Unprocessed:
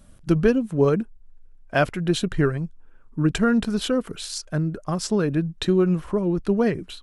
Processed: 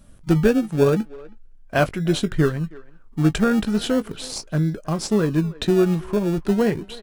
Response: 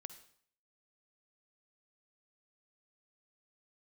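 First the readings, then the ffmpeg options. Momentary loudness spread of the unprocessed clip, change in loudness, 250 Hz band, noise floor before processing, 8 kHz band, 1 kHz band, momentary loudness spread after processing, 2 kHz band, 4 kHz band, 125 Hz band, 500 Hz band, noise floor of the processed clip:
8 LU, +1.5 dB, +1.5 dB, −50 dBFS, +1.0 dB, +1.0 dB, 8 LU, +1.0 dB, +1.0 dB, +2.5 dB, +1.5 dB, −47 dBFS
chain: -filter_complex "[0:a]asplit=2[link_01][link_02];[link_02]acrusher=samples=34:mix=1:aa=0.000001:lfo=1:lforange=20.4:lforate=0.37,volume=-11.5dB[link_03];[link_01][link_03]amix=inputs=2:normalize=0,asplit=2[link_04][link_05];[link_05]adelay=19,volume=-13dB[link_06];[link_04][link_06]amix=inputs=2:normalize=0,asplit=2[link_07][link_08];[link_08]adelay=320,highpass=300,lowpass=3400,asoftclip=type=hard:threshold=-13dB,volume=-20dB[link_09];[link_07][link_09]amix=inputs=2:normalize=0"

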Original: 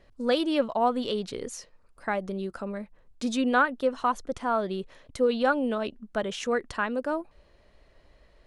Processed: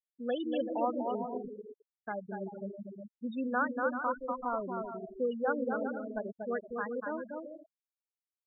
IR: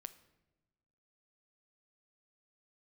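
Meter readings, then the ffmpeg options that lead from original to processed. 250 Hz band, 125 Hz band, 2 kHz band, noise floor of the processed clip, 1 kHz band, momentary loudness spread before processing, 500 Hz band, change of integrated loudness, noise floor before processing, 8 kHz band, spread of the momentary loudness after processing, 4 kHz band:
−7.0 dB, can't be measured, −8.0 dB, below −85 dBFS, −7.0 dB, 12 LU, −6.5 dB, −7.5 dB, −60 dBFS, below −35 dB, 13 LU, below −15 dB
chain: -af "aecho=1:1:240|384|470.4|522.2|553.3:0.631|0.398|0.251|0.158|0.1,afftfilt=real='re*gte(hypot(re,im),0.112)':imag='im*gte(hypot(re,im),0.112)':win_size=1024:overlap=0.75,volume=-8.5dB"

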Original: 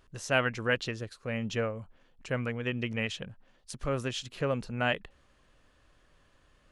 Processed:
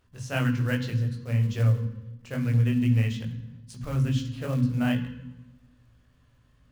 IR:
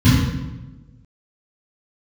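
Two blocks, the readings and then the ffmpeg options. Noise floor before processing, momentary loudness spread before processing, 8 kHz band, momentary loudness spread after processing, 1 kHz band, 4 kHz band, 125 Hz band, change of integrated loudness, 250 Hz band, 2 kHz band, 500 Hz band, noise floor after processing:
−66 dBFS, 11 LU, can't be measured, 16 LU, −4.0 dB, −3.5 dB, +13.5 dB, +5.5 dB, +8.5 dB, −4.0 dB, −4.5 dB, −62 dBFS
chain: -filter_complex "[0:a]flanger=delay=16.5:depth=4.6:speed=2.4,acrusher=bits=4:mode=log:mix=0:aa=0.000001,asplit=2[link_01][link_02];[1:a]atrim=start_sample=2205,highshelf=frequency=3400:gain=10,adelay=13[link_03];[link_02][link_03]afir=irnorm=-1:irlink=0,volume=-31dB[link_04];[link_01][link_04]amix=inputs=2:normalize=0,volume=-1.5dB"

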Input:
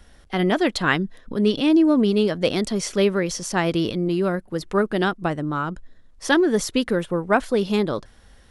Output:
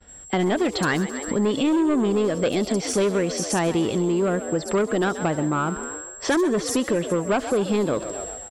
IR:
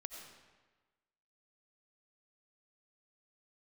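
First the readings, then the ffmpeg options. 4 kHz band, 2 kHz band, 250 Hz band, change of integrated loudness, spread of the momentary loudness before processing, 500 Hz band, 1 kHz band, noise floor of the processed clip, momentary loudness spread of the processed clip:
−3.0 dB, −3.5 dB, −1.5 dB, −1.5 dB, 9 LU, −0.5 dB, −1.0 dB, −40 dBFS, 5 LU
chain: -filter_complex "[0:a]highpass=46,equalizer=frequency=500:width=0.6:gain=3.5,aeval=exprs='val(0)+0.00891*sin(2*PI*7600*n/s)':channel_layout=same,asplit=2[link_01][link_02];[link_02]aeval=exprs='0.2*(abs(mod(val(0)/0.2+3,4)-2)-1)':channel_layout=same,volume=-10dB[link_03];[link_01][link_03]amix=inputs=2:normalize=0,acontrast=56,asoftclip=type=tanh:threshold=-5dB,asplit=2[link_04][link_05];[link_05]asplit=6[link_06][link_07][link_08][link_09][link_10][link_11];[link_06]adelay=132,afreqshift=61,volume=-14.5dB[link_12];[link_07]adelay=264,afreqshift=122,volume=-19.2dB[link_13];[link_08]adelay=396,afreqshift=183,volume=-24dB[link_14];[link_09]adelay=528,afreqshift=244,volume=-28.7dB[link_15];[link_10]adelay=660,afreqshift=305,volume=-33.4dB[link_16];[link_11]adelay=792,afreqshift=366,volume=-38.2dB[link_17];[link_12][link_13][link_14][link_15][link_16][link_17]amix=inputs=6:normalize=0[link_18];[link_04][link_18]amix=inputs=2:normalize=0,agate=range=-33dB:threshold=-28dB:ratio=3:detection=peak,acrossover=split=5400[link_19][link_20];[link_20]adelay=70[link_21];[link_19][link_21]amix=inputs=2:normalize=0,acompressor=threshold=-24dB:ratio=2.5"

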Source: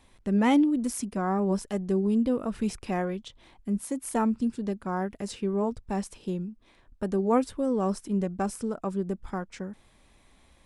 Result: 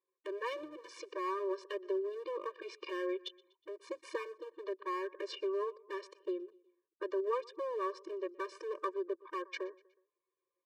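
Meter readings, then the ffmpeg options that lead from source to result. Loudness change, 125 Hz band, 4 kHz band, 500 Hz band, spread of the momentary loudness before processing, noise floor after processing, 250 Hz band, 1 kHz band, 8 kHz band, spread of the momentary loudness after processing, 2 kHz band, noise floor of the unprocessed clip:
−11.0 dB, below −40 dB, −4.0 dB, −6.0 dB, 11 LU, below −85 dBFS, −19.5 dB, −8.5 dB, below −20 dB, 9 LU, −5.5 dB, −61 dBFS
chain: -af "anlmdn=0.0631,equalizer=frequency=700:width_type=o:width=0.51:gain=-10.5,acompressor=threshold=-37dB:ratio=5,highpass=frequency=200:width=0.5412,highpass=frequency=200:width=1.3066,equalizer=frequency=220:width_type=q:width=4:gain=5,equalizer=frequency=750:width_type=q:width=4:gain=3,equalizer=frequency=1100:width_type=q:width=4:gain=6,equalizer=frequency=2100:width_type=q:width=4:gain=3,lowpass=frequency=4700:width=0.5412,lowpass=frequency=4700:width=1.3066,aecho=1:1:122|244|366:0.0631|0.0303|0.0145,aeval=exprs='clip(val(0),-1,0.0158)':channel_layout=same,afftfilt=real='re*eq(mod(floor(b*sr/1024/310),2),1)':imag='im*eq(mod(floor(b*sr/1024/310),2),1)':win_size=1024:overlap=0.75,volume=8dB"

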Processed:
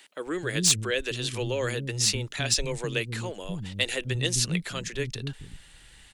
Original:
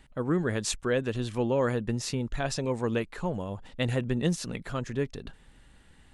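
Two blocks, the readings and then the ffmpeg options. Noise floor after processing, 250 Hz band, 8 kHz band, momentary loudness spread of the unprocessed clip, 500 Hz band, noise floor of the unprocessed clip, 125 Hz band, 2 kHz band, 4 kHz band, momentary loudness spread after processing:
−53 dBFS, −4.0 dB, +11.5 dB, 8 LU, −2.5 dB, −57 dBFS, +0.5 dB, +5.5 dB, +11.5 dB, 12 LU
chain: -filter_complex "[0:a]equalizer=frequency=240:width_type=o:width=0.21:gain=-10,acrossover=split=600|2100[link_01][link_02][link_03];[link_02]acompressor=threshold=-48dB:ratio=6[link_04];[link_03]aeval=exprs='0.188*sin(PI/2*2.51*val(0)/0.188)':channel_layout=same[link_05];[link_01][link_04][link_05]amix=inputs=3:normalize=0,acrossover=split=270[link_06][link_07];[link_06]adelay=260[link_08];[link_08][link_07]amix=inputs=2:normalize=0,volume=1dB"

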